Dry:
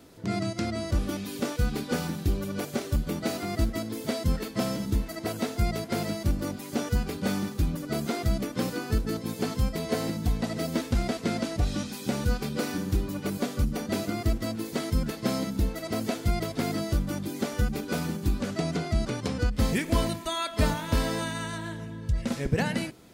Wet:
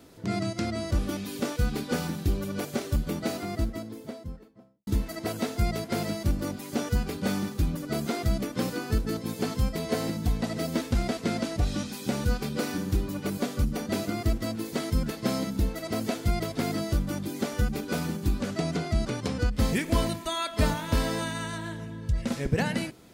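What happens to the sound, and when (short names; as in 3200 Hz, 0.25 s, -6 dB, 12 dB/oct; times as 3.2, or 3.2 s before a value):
3.04–4.87 studio fade out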